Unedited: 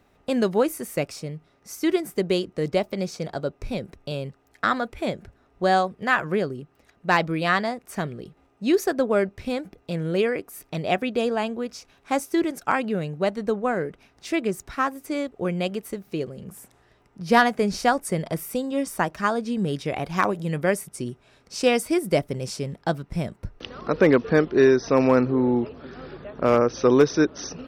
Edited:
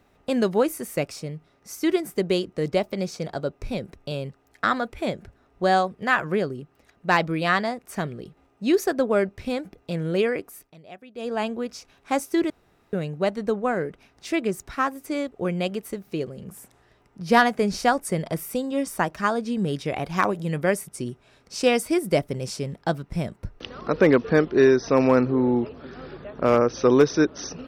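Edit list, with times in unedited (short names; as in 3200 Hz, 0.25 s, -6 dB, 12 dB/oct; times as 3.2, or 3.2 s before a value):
10.46–11.42 dip -20 dB, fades 0.28 s
12.5–12.93 room tone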